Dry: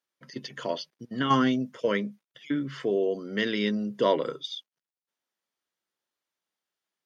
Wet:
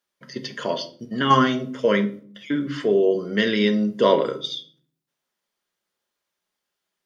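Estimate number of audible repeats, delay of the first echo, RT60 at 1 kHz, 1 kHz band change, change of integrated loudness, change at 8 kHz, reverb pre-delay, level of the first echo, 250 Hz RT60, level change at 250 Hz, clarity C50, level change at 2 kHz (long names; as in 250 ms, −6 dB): no echo audible, no echo audible, 0.45 s, +7.0 dB, +6.5 dB, can't be measured, 5 ms, no echo audible, 0.80 s, +5.5 dB, 13.5 dB, +6.0 dB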